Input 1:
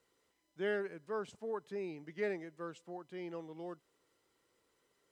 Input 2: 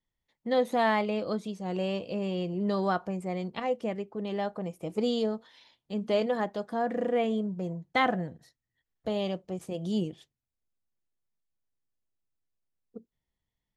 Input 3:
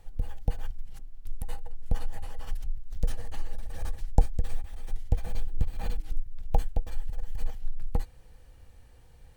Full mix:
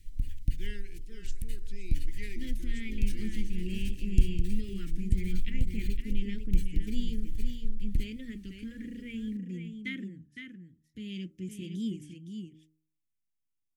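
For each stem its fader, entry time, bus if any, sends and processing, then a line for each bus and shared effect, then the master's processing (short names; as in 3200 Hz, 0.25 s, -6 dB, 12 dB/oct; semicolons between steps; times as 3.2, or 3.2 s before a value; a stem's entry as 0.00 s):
-1.5 dB, 0.00 s, no send, echo send -12.5 dB, high shelf 3400 Hz +10.5 dB
-3.5 dB, 1.90 s, no send, echo send -7 dB, bell 4200 Hz -13.5 dB 0.29 oct; vocal rider 0.5 s
-0.5 dB, 0.00 s, no send, echo send -22.5 dB, dry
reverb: off
echo: echo 0.513 s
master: Chebyshev band-stop 310–2100 Hz, order 3; de-hum 78.24 Hz, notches 17; record warp 33 1/3 rpm, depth 100 cents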